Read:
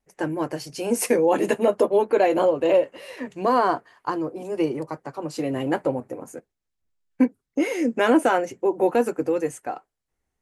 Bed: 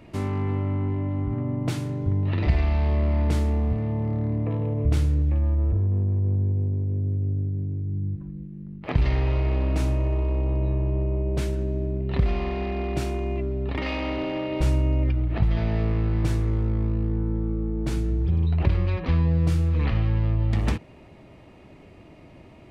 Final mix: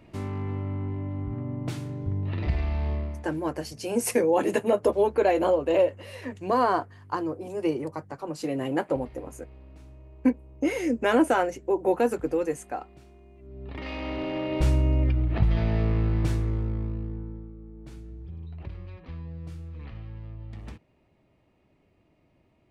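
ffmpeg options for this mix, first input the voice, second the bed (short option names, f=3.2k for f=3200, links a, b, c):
-filter_complex "[0:a]adelay=3050,volume=-3dB[a];[1:a]volume=19dB,afade=t=out:st=2.91:d=0.35:silence=0.105925,afade=t=in:st=13.39:d=1.15:silence=0.0595662,afade=t=out:st=16.02:d=1.5:silence=0.141254[b];[a][b]amix=inputs=2:normalize=0"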